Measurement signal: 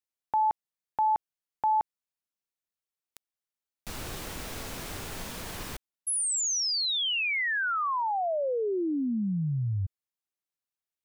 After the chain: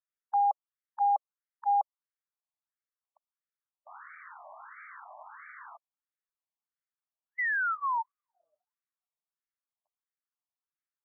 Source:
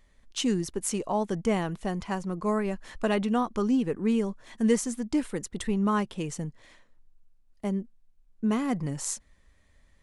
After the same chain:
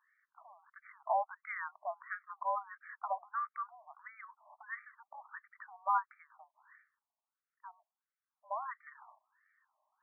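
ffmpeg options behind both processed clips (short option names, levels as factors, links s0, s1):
-af "highpass=f=400:t=q:w=0.5412,highpass=f=400:t=q:w=1.307,lowpass=f=2400:t=q:w=0.5176,lowpass=f=2400:t=q:w=0.7071,lowpass=f=2400:t=q:w=1.932,afreqshift=-56,afftfilt=real='re*between(b*sr/1024,810*pow(1700/810,0.5+0.5*sin(2*PI*1.5*pts/sr))/1.41,810*pow(1700/810,0.5+0.5*sin(2*PI*1.5*pts/sr))*1.41)':imag='im*between(b*sr/1024,810*pow(1700/810,0.5+0.5*sin(2*PI*1.5*pts/sr))/1.41,810*pow(1700/810,0.5+0.5*sin(2*PI*1.5*pts/sr))*1.41)':win_size=1024:overlap=0.75"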